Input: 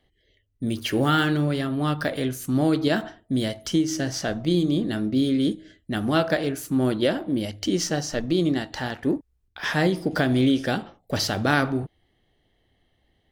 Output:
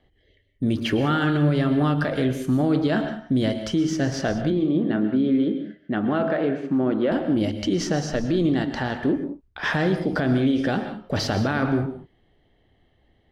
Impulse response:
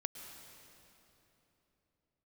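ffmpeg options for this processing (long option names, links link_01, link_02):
-filter_complex "[0:a]aemphasis=mode=reproduction:type=75fm,alimiter=limit=-18dB:level=0:latency=1:release=47,asettb=1/sr,asplit=3[link_01][link_02][link_03];[link_01]atrim=end=4.504[link_04];[link_02]atrim=start=4.5:end=7.12,asetpts=PTS-STARTPTS,afade=type=in:duration=0.004:curve=qsin,afade=type=out:start_time=2.616:duration=0.004:curve=qsin,highpass=180,lowpass=2300[link_05];[link_03]atrim=start=7.116[link_06];[link_04][link_05]acrossfade=duration=0.004:curve1=hsin:curve2=qsin[link_07];[link_07][link_06]acrossfade=duration=0.004:curve1=qsin:curve2=hsin[link_08];[1:a]atrim=start_sample=2205,afade=type=out:start_time=0.25:duration=0.01,atrim=end_sample=11466[link_09];[link_08][link_09]afir=irnorm=-1:irlink=0,volume=6.5dB"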